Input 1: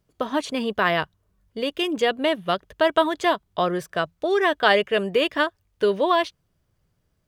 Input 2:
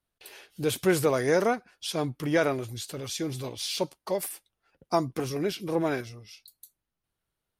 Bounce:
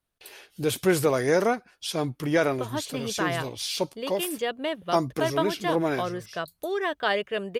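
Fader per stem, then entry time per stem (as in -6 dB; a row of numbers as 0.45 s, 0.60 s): -7.5 dB, +1.5 dB; 2.40 s, 0.00 s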